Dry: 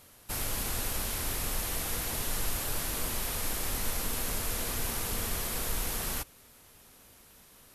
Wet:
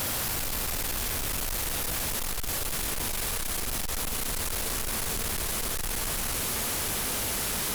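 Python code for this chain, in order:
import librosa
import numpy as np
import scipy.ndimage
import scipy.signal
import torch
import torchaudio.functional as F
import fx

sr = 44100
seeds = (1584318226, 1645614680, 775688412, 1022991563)

y = np.sign(x) * np.sqrt(np.mean(np.square(x)))
y = fx.doppler_pass(y, sr, speed_mps=19, closest_m=19.0, pass_at_s=2.07)
y = fx.env_flatten(y, sr, amount_pct=100)
y = F.gain(torch.from_numpy(y), 3.0).numpy()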